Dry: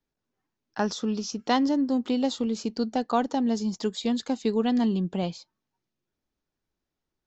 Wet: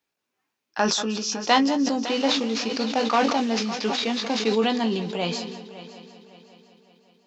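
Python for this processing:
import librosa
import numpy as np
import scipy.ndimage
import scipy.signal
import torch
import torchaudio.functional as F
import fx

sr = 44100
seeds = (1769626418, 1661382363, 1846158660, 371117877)

y = fx.cvsd(x, sr, bps=32000, at=(2.04, 4.51))
y = fx.highpass(y, sr, hz=640.0, slope=6)
y = fx.peak_eq(y, sr, hz=2500.0, db=5.5, octaves=0.36)
y = fx.doubler(y, sr, ms=18.0, db=-8.0)
y = fx.echo_heads(y, sr, ms=186, heads='first and third', feedback_pct=54, wet_db=-16.5)
y = fx.sustainer(y, sr, db_per_s=40.0)
y = F.gain(torch.from_numpy(y), 6.5).numpy()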